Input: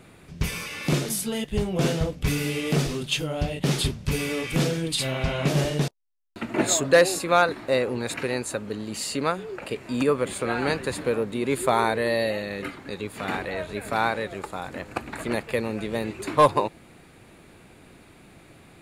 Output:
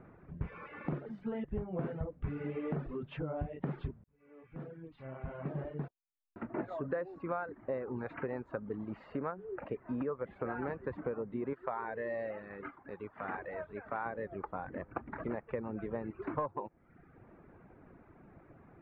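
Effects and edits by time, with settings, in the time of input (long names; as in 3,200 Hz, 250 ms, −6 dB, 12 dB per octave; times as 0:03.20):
0:04.04–0:07.93: fade in
0:11.53–0:14.06: low-shelf EQ 490 Hz −9.5 dB
whole clip: reverb reduction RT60 0.72 s; low-pass filter 1,600 Hz 24 dB per octave; downward compressor 6 to 1, threshold −29 dBFS; level −4.5 dB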